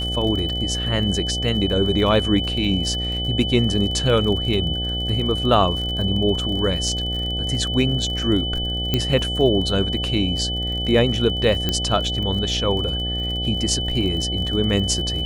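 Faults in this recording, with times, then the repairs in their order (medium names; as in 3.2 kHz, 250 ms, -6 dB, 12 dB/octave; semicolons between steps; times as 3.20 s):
buzz 60 Hz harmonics 13 -27 dBFS
crackle 40 per s -28 dBFS
whine 3 kHz -25 dBFS
8.94 s: pop -6 dBFS
11.69 s: pop -7 dBFS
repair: de-click; de-hum 60 Hz, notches 13; band-stop 3 kHz, Q 30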